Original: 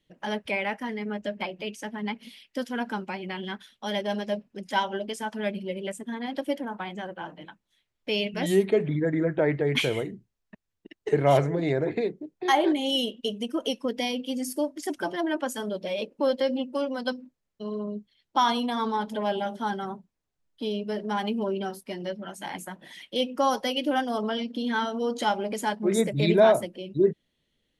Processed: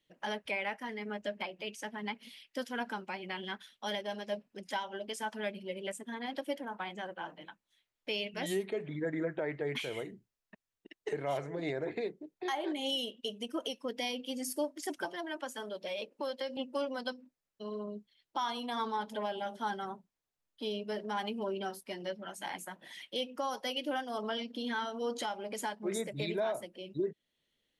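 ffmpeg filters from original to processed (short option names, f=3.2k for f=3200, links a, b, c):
-filter_complex "[0:a]asettb=1/sr,asplit=3[a][b][c];[a]atrim=end=15.054[d];[b]atrim=start=15.05:end=16.57,asetpts=PTS-STARTPTS,afade=t=in:d=0.004:c=qsin,afade=t=out:st=1.516:d=0.004:c=qsin,acrossover=split=200|700|3900[e][f][g][h];[e]acompressor=threshold=-54dB:ratio=3[i];[f]acompressor=threshold=-36dB:ratio=3[j];[g]acompressor=threshold=-37dB:ratio=3[k];[h]acompressor=threshold=-48dB:ratio=3[l];[i][j][k][l]amix=inputs=4:normalize=0[m];[c]atrim=start=16.566[n];[d][m]acrossfade=d=0.004:c1=hsin:c2=qsin[o];[o][n]acrossfade=d=0.004:c1=qsin:c2=hsin,lowshelf=f=300:g=-10,alimiter=limit=-22dB:level=0:latency=1:release=389,volume=-3dB"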